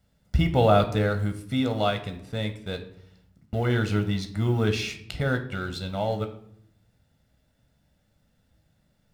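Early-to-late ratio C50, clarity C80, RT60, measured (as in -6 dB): 12.0 dB, 15.5 dB, 0.70 s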